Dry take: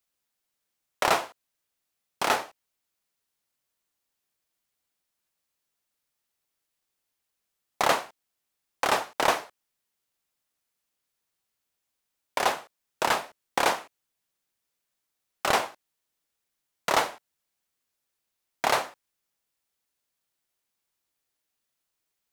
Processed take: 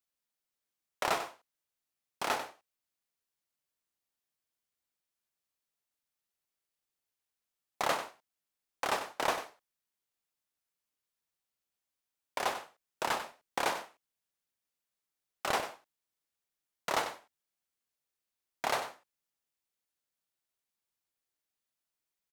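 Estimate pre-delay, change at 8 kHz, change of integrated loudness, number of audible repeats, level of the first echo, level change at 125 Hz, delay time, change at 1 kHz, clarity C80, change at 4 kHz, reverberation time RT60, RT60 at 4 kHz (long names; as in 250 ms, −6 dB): no reverb audible, −7.5 dB, −8.0 dB, 1, −11.0 dB, −7.5 dB, 95 ms, −7.5 dB, no reverb audible, −7.5 dB, no reverb audible, no reverb audible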